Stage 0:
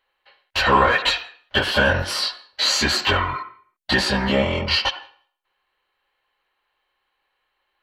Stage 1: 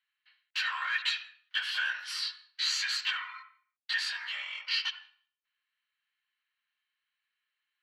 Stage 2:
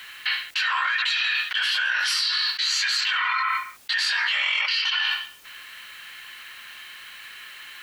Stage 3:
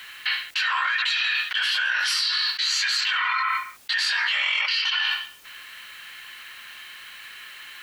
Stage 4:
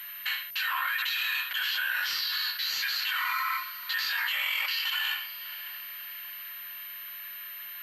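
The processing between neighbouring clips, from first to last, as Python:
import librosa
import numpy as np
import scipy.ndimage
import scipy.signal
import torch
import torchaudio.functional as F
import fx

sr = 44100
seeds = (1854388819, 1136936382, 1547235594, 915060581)

y1 = scipy.signal.sosfilt(scipy.signal.cheby2(4, 80, 250.0, 'highpass', fs=sr, output='sos'), x)
y1 = fx.high_shelf(y1, sr, hz=9700.0, db=-10.0)
y1 = y1 * 10.0 ** (-9.0 / 20.0)
y2 = fx.env_flatten(y1, sr, amount_pct=100)
y2 = y2 * 10.0 ** (3.5 / 20.0)
y3 = y2
y4 = fx.echo_diffused(y3, sr, ms=601, feedback_pct=46, wet_db=-15)
y4 = fx.pwm(y4, sr, carrier_hz=13000.0)
y4 = y4 * 10.0 ** (-6.0 / 20.0)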